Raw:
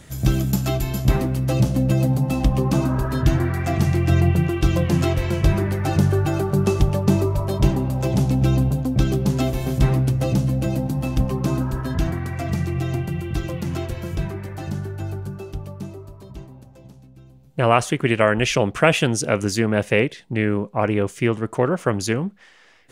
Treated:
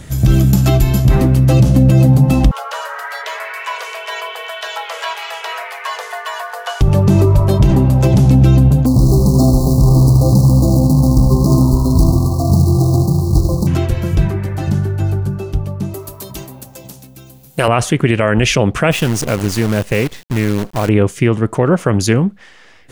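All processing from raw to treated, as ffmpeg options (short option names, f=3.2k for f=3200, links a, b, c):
-filter_complex "[0:a]asettb=1/sr,asplit=3[a][b][c];[a]atrim=end=2.514[d];[b]atrim=start=2.51:end=6.81,asetpts=PTS-STARTPTS,afade=t=in:d=0.004:c=qsin,afade=t=out:st=4.296:d=0.004:c=qsin,highpass=790,acrossover=split=3900[e][f];[f]acompressor=threshold=-44dB:ratio=4:attack=1:release=60[g];[e][g]amix=inputs=2:normalize=0,afreqshift=310[h];[c]atrim=start=6.806[i];[d][h]acrossfade=d=0.004:c1=hsin:c2=qsin[j];[j][i]acrossfade=d=0.004:c1=qsin:c2=hsin,asettb=1/sr,asplit=3[k][l][m];[k]atrim=end=8.864[n];[l]atrim=start=8.86:end=13.67,asetpts=PTS-STARTPTS,afade=t=in:d=0.004:c=qsin,afade=t=out:st=4.806:d=0.004:c=qsin,acrusher=bits=3:mode=log:mix=0:aa=0.000001,asuperstop=centerf=2200:order=20:qfactor=0.76,aecho=1:1:78|156|234|312|390|468|546:0.335|0.198|0.117|0.0688|0.0406|0.0239|0.0141,atrim=end_sample=212121[o];[m]atrim=start=13.666[p];[n][o]acrossfade=d=0.004:c1=hsin:c2=qsin[q];[q][p]acrossfade=d=0.004:c1=qsin:c2=hsin,asettb=1/sr,asplit=3[r][s][t];[r]atrim=end=15.944[u];[s]atrim=start=15.94:end=17.68,asetpts=PTS-STARTPTS,afade=t=in:d=0.004:c=qsin,afade=t=out:st=1.736:d=0.004:c=qsin,aemphasis=mode=production:type=riaa,acontrast=36[v];[t]atrim=start=17.676[w];[u][v]acrossfade=d=0.004:c1=hsin:c2=qsin[x];[x][w]acrossfade=d=0.004:c1=qsin:c2=hsin,asettb=1/sr,asplit=3[y][z][aa];[y]atrim=end=18.914[ab];[z]atrim=start=18.91:end=20.89,asetpts=PTS-STARTPTS,afade=t=in:d=0.004:c=qsin,afade=t=out:st=1.976:d=0.004:c=qsin,lowshelf=f=160:g=2,acrusher=bits=5:dc=4:mix=0:aa=0.000001,acompressor=threshold=-32dB:ratio=1.5:attack=3.2:release=140:knee=1:detection=peak[ac];[aa]atrim=start=20.886[ad];[ab][ac]acrossfade=d=0.004:c1=hsin:c2=qsin[ae];[ae][ad]acrossfade=d=0.004:c1=qsin:c2=hsin,lowshelf=f=200:g=6.5,alimiter=level_in=8.5dB:limit=-1dB:release=50:level=0:latency=1,volume=-1dB"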